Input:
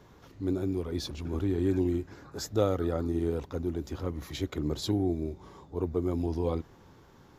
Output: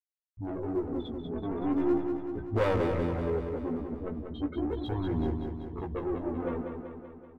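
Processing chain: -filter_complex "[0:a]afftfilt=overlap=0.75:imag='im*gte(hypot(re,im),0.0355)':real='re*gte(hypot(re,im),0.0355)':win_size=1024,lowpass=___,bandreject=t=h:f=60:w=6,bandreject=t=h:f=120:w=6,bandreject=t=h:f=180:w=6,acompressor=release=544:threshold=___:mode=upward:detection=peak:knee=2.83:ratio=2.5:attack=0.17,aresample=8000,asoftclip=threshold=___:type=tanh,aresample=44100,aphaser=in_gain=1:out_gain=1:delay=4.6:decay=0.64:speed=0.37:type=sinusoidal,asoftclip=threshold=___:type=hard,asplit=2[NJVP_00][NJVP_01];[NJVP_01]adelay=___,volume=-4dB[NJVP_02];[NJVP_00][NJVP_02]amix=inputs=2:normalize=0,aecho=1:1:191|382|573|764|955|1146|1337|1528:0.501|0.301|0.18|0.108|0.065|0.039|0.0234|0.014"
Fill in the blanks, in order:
2900, -45dB, -30dB, -25dB, 17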